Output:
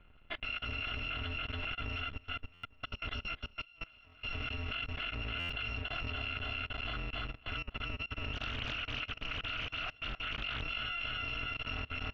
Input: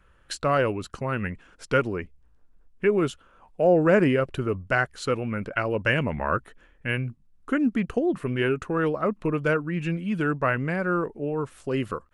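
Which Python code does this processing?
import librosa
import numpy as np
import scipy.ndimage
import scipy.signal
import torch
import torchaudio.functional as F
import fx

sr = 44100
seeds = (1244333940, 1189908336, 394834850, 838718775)

y = fx.bit_reversed(x, sr, seeds[0], block=256)
y = fx.echo_feedback(y, sr, ms=282, feedback_pct=56, wet_db=-7.0)
y = fx.over_compress(y, sr, threshold_db=-25.0, ratio=-0.5)
y = scipy.signal.sosfilt(scipy.signal.ellip(4, 1.0, 70, 3100.0, 'lowpass', fs=sr, output='sos'), y)
y = fx.dynamic_eq(y, sr, hz=920.0, q=1.1, threshold_db=-50.0, ratio=4.0, max_db=-5)
y = fx.level_steps(y, sr, step_db=22)
y = fx.buffer_glitch(y, sr, at_s=(2.53, 5.39), block=512, repeats=8)
y = fx.doppler_dist(y, sr, depth_ms=0.65, at=(8.33, 10.62))
y = y * 10.0 ** (6.0 / 20.0)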